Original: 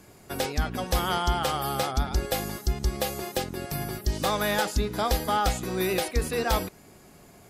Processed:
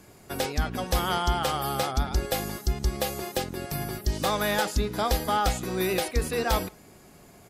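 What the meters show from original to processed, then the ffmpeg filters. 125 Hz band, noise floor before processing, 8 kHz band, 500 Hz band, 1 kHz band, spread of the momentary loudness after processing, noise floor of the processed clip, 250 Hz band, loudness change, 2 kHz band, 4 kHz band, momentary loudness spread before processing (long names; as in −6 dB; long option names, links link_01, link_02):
0.0 dB, −52 dBFS, 0.0 dB, 0.0 dB, 0.0 dB, 6 LU, −52 dBFS, 0.0 dB, 0.0 dB, 0.0 dB, 0.0 dB, 6 LU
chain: -filter_complex "[0:a]asplit=2[link_01][link_02];[link_02]adelay=157.4,volume=-30dB,highshelf=frequency=4000:gain=-3.54[link_03];[link_01][link_03]amix=inputs=2:normalize=0"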